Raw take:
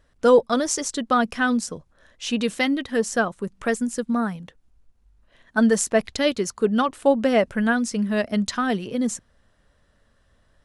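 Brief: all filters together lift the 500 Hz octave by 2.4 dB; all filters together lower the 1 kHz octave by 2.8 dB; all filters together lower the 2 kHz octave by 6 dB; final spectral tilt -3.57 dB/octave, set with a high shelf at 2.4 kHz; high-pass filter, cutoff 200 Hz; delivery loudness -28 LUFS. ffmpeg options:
-af "highpass=200,equalizer=f=500:t=o:g=4,equalizer=f=1000:t=o:g=-4,equalizer=f=2000:t=o:g=-8.5,highshelf=f=2400:g=3.5,volume=0.501"

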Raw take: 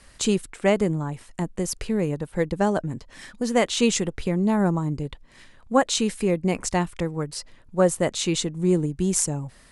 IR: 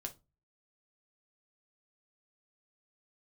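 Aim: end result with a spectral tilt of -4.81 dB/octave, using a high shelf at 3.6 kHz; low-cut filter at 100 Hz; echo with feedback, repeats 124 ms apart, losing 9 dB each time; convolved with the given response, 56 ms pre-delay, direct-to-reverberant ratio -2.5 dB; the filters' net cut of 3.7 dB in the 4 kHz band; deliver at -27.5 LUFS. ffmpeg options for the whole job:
-filter_complex "[0:a]highpass=100,highshelf=f=3600:g=4,equalizer=f=4000:t=o:g=-7.5,aecho=1:1:124|248|372|496:0.355|0.124|0.0435|0.0152,asplit=2[s0][s1];[1:a]atrim=start_sample=2205,adelay=56[s2];[s1][s2]afir=irnorm=-1:irlink=0,volume=1.78[s3];[s0][s3]amix=inputs=2:normalize=0,volume=0.376"

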